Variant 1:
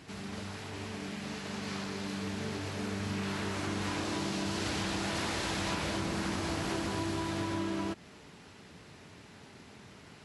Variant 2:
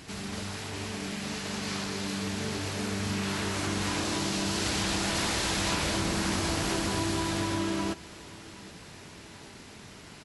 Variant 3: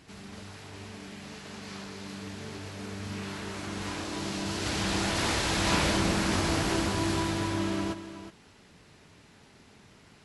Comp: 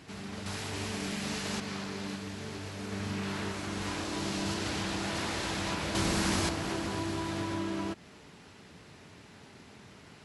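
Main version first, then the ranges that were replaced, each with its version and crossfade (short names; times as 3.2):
1
0.46–1.6 from 2
2.16–2.92 from 3
3.52–4.54 from 3
5.95–6.49 from 2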